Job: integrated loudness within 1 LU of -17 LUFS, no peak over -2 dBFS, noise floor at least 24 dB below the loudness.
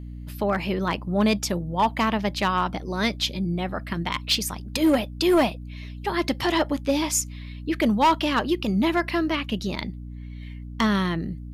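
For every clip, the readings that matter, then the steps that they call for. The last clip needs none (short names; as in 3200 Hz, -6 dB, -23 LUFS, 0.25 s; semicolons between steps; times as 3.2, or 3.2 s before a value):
clipped 0.8%; flat tops at -14.0 dBFS; hum 60 Hz; harmonics up to 300 Hz; hum level -34 dBFS; loudness -24.5 LUFS; peak -14.0 dBFS; loudness target -17.0 LUFS
-> clip repair -14 dBFS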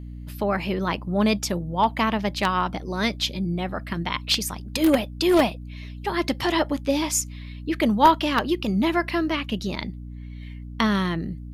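clipped 0.0%; hum 60 Hz; harmonics up to 300 Hz; hum level -34 dBFS
-> de-hum 60 Hz, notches 5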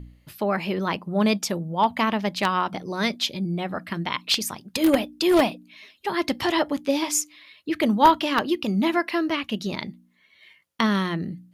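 hum none; loudness -24.0 LUFS; peak -4.5 dBFS; loudness target -17.0 LUFS
-> gain +7 dB; limiter -2 dBFS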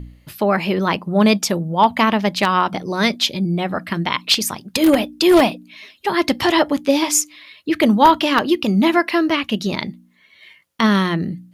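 loudness -17.5 LUFS; peak -2.0 dBFS; noise floor -54 dBFS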